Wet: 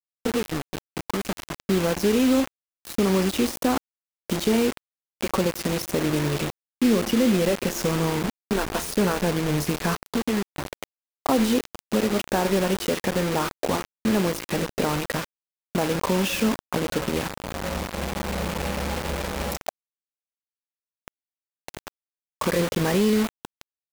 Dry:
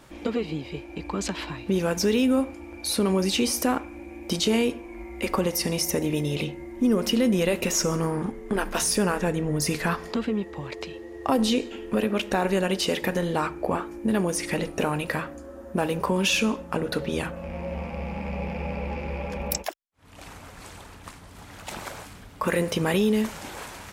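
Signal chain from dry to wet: treble shelf 2.1 kHz -12 dB; bit crusher 5-bit; trim +2 dB

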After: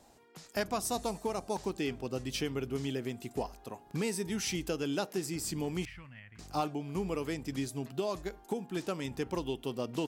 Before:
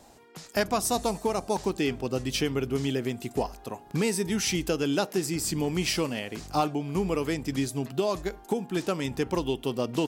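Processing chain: 5.85–6.39 s: FFT filter 100 Hz 0 dB, 420 Hz -29 dB, 1.9 kHz -4 dB, 5.1 kHz -29 dB; trim -7 dB

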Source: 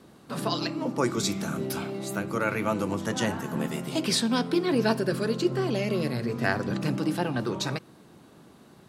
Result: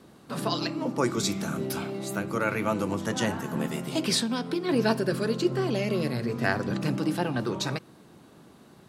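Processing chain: 4.21–4.69 s: compression, threshold -25 dBFS, peak gain reduction 6 dB

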